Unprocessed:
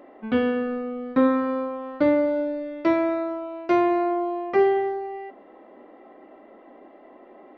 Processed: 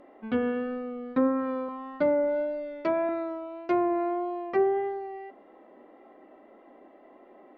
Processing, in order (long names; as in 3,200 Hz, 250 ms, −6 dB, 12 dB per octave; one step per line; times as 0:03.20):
pitch vibrato 1.7 Hz 18 cents
treble cut that deepens with the level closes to 1,300 Hz, closed at −15.5 dBFS
0:01.68–0:03.09: comb filter 4.8 ms, depth 65%
level −5 dB